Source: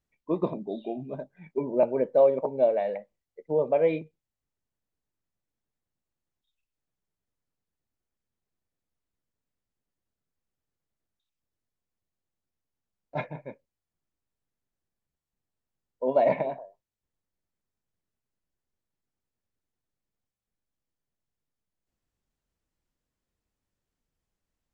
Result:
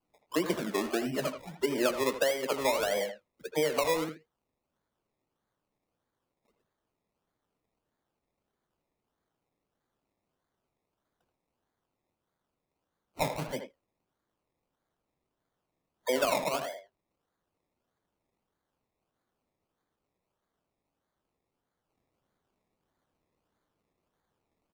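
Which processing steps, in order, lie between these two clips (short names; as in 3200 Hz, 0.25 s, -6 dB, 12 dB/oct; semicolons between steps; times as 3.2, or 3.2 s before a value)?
HPF 290 Hz 6 dB/oct; bell 650 Hz -4 dB 1.1 oct; compressor 12:1, threshold -34 dBFS, peak gain reduction 15.5 dB; dispersion lows, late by 76 ms, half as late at 1200 Hz; decimation with a swept rate 23×, swing 60% 1.6 Hz; speakerphone echo 80 ms, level -7 dB; gain +9 dB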